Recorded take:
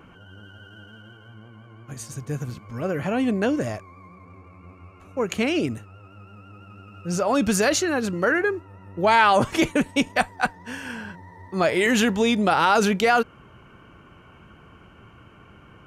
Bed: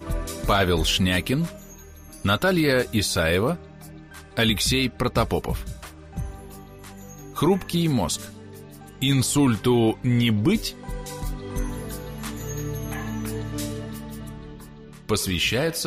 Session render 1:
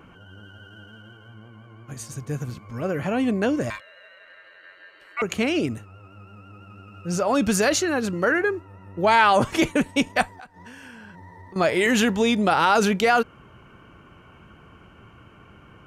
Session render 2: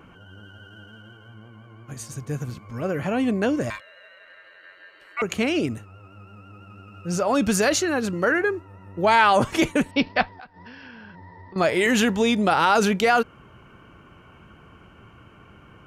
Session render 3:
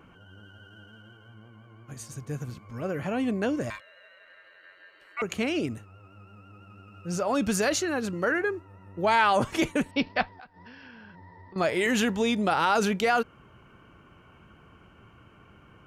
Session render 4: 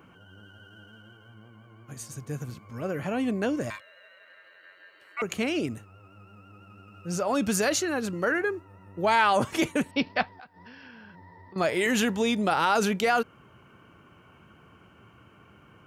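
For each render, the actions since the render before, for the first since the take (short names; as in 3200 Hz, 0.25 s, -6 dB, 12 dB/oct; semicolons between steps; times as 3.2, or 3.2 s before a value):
3.7–5.22 ring modulator 1700 Hz; 10.33–11.56 compressor 12:1, threshold -39 dBFS
9.91–11.58 careless resampling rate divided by 4×, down none, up filtered
gain -5 dB
HPF 81 Hz; high shelf 9900 Hz +6 dB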